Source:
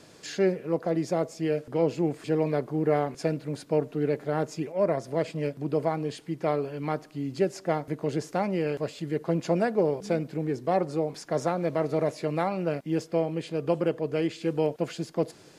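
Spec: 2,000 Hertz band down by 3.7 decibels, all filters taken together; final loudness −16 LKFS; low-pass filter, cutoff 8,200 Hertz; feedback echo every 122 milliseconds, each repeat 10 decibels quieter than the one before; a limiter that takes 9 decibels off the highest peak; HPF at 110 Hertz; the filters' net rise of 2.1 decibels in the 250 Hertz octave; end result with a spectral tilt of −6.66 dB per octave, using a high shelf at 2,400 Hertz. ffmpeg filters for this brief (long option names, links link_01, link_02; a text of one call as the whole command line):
ffmpeg -i in.wav -af "highpass=110,lowpass=8200,equalizer=frequency=250:width_type=o:gain=3.5,equalizer=frequency=2000:width_type=o:gain=-7.5,highshelf=frequency=2400:gain=5.5,alimiter=limit=-20.5dB:level=0:latency=1,aecho=1:1:122|244|366|488:0.316|0.101|0.0324|0.0104,volume=15dB" out.wav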